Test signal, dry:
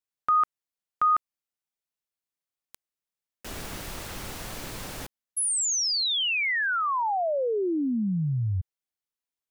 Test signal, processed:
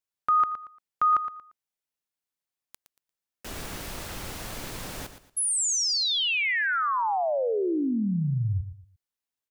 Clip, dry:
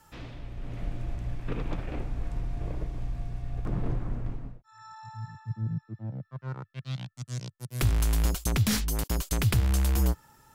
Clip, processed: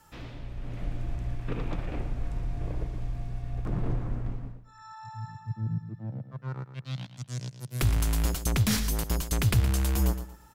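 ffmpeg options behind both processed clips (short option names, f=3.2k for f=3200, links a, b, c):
-af "aecho=1:1:116|232|348:0.282|0.0789|0.0221"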